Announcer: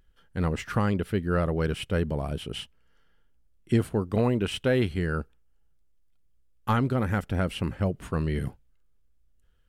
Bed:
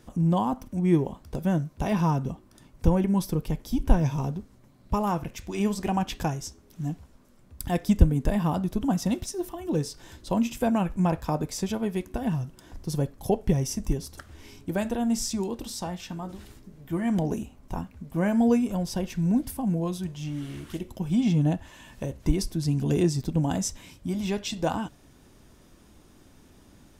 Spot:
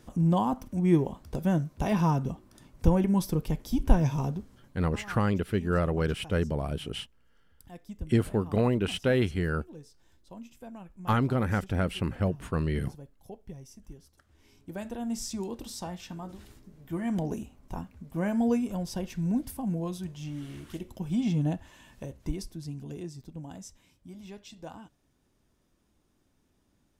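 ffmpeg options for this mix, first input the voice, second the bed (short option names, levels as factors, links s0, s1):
-filter_complex "[0:a]adelay=4400,volume=0.891[s0];[1:a]volume=5.62,afade=t=out:st=4.6:d=0.34:silence=0.105925,afade=t=in:st=14.17:d=1.4:silence=0.158489,afade=t=out:st=21.48:d=1.49:silence=0.251189[s1];[s0][s1]amix=inputs=2:normalize=0"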